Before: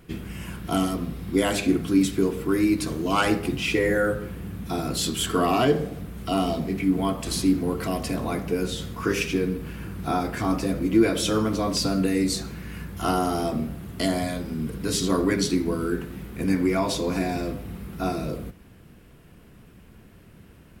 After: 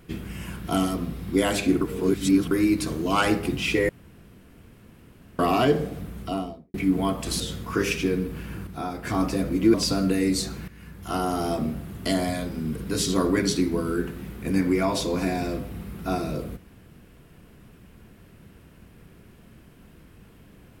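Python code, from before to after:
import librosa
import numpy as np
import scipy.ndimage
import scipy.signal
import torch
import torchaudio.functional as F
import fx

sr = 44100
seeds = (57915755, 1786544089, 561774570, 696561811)

y = fx.studio_fade_out(x, sr, start_s=6.07, length_s=0.67)
y = fx.edit(y, sr, fx.reverse_span(start_s=1.81, length_s=0.7),
    fx.room_tone_fill(start_s=3.89, length_s=1.5),
    fx.cut(start_s=7.4, length_s=1.3),
    fx.clip_gain(start_s=9.97, length_s=0.38, db=-6.5),
    fx.cut(start_s=11.04, length_s=0.64),
    fx.fade_in_from(start_s=12.62, length_s=0.85, floor_db=-12.5), tone=tone)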